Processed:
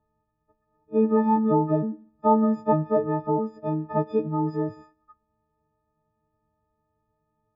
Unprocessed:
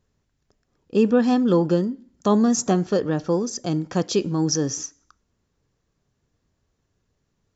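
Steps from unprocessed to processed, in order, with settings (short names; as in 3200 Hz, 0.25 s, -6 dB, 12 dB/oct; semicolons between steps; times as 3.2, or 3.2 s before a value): frequency quantiser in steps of 6 st; ladder low-pass 1200 Hz, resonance 45%; gain +5 dB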